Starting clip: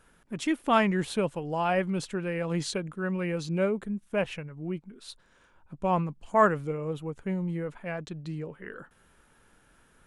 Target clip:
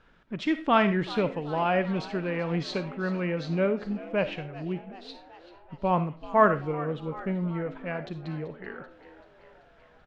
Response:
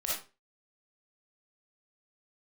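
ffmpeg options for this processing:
-filter_complex "[0:a]lowpass=f=4500:w=0.5412,lowpass=f=4500:w=1.3066,asplit=7[s0][s1][s2][s3][s4][s5][s6];[s1]adelay=385,afreqshift=83,volume=0.133[s7];[s2]adelay=770,afreqshift=166,volume=0.0841[s8];[s3]adelay=1155,afreqshift=249,volume=0.0531[s9];[s4]adelay=1540,afreqshift=332,volume=0.0335[s10];[s5]adelay=1925,afreqshift=415,volume=0.0209[s11];[s6]adelay=2310,afreqshift=498,volume=0.0132[s12];[s0][s7][s8][s9][s10][s11][s12]amix=inputs=7:normalize=0,asplit=2[s13][s14];[1:a]atrim=start_sample=2205,highshelf=f=5800:g=9[s15];[s14][s15]afir=irnorm=-1:irlink=0,volume=0.168[s16];[s13][s16]amix=inputs=2:normalize=0"

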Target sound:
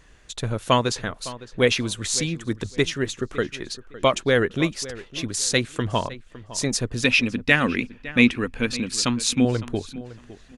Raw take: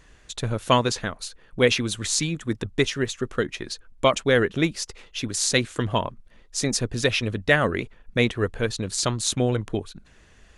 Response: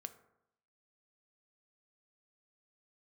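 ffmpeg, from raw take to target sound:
-filter_complex "[0:a]asettb=1/sr,asplit=3[s0][s1][s2];[s0]atrim=end=7.044[s3];[s1]atrim=start=7.04:end=9.45,asetpts=PTS-STARTPTS,afade=t=in:d=0.004:c=qsin,afade=t=out:st=2.406:d=0.004:c=qsin,equalizer=f=100:t=o:w=0.33:g=-11,equalizer=f=250:t=o:w=0.33:g=11,equalizer=f=400:t=o:w=0.33:g=-6,equalizer=f=630:t=o:w=0.33:g=-8,equalizer=f=2500:t=o:w=0.33:g=10,equalizer=f=5000:t=o:w=0.33:g=5[s4];[s2]atrim=start=9.446[s5];[s3][s4]acrossfade=d=0.004:c1=hsin:c2=qsin[s6];[s6][s5]acrossfade=d=0.004:c1=qsin:c2=hsin,asplit=2[s7][s8];[s8]adelay=559,lowpass=f=3300:p=1,volume=0.15,asplit=2[s9][s10];[s10]adelay=559,lowpass=f=3300:p=1,volume=0.23[s11];[s7][s9][s11]amix=inputs=3:normalize=0"

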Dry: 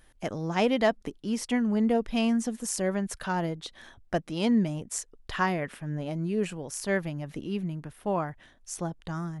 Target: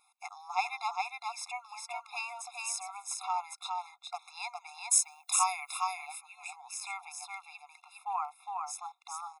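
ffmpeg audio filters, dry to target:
-filter_complex "[0:a]asettb=1/sr,asplit=3[s0][s1][s2];[s0]atrim=end=4.914[s3];[s1]atrim=start=4.91:end=5.8,asetpts=PTS-STARTPTS,afade=t=in:d=0.004:c=qsin,afade=t=out:st=0.886:d=0.004:c=qsin,aemphasis=mode=production:type=riaa[s4];[s2]atrim=start=5.796[s5];[s3][s4]acrossfade=d=0.004:c1=hsin:c2=qsin[s6];[s6][s5]acrossfade=d=0.004:c1=qsin:c2=hsin,aecho=1:1:410:0.668,afftfilt=real='re*eq(mod(floor(b*sr/1024/690),2),1)':imag='im*eq(mod(floor(b*sr/1024/690),2),1)':win_size=1024:overlap=0.75"

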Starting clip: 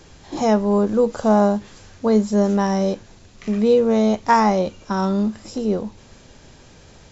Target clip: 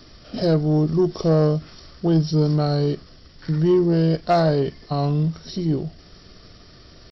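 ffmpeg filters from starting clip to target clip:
-af "asetrate=33038,aresample=44100,atempo=1.33484,superequalizer=9b=0.501:12b=0.631:14b=2,asoftclip=type=tanh:threshold=0.335"

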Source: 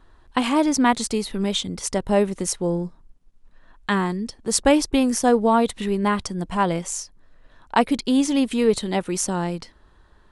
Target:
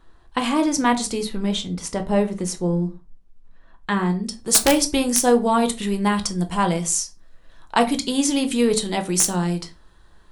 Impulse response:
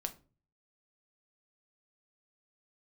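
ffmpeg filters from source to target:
-filter_complex "[0:a]asetnsamples=n=441:p=0,asendcmd='1.29 highshelf g -3;4.24 highshelf g 11',highshelf=f=4000:g=3,aeval=exprs='(mod(1.5*val(0)+1,2)-1)/1.5':c=same[s0];[1:a]atrim=start_sample=2205,afade=t=out:st=0.23:d=0.01,atrim=end_sample=10584[s1];[s0][s1]afir=irnorm=-1:irlink=0"

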